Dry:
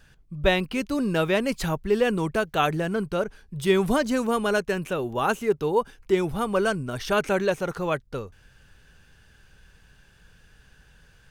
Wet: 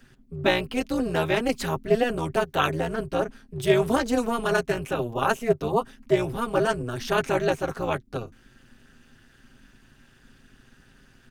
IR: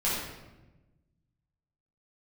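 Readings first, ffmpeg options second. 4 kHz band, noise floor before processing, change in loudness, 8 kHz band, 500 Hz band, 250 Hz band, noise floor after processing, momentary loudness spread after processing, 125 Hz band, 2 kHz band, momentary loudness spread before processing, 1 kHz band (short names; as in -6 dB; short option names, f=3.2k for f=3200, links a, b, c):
0.0 dB, -57 dBFS, -0.5 dB, -0.5 dB, 0.0 dB, -1.5 dB, -58 dBFS, 6 LU, 0.0 dB, -0.5 dB, 6 LU, +0.5 dB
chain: -filter_complex "[0:a]aecho=1:1:7.5:0.57,tremolo=f=240:d=0.919,acrossover=split=140|4600[a][b][c];[a]aeval=exprs='0.0141*(abs(mod(val(0)/0.0141+3,4)-2)-1)':c=same[d];[d][b][c]amix=inputs=3:normalize=0,volume=2.5dB"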